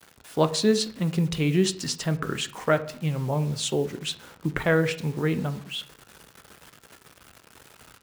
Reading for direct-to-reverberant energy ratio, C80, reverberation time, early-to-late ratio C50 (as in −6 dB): 9.5 dB, 19.0 dB, 0.60 s, 15.5 dB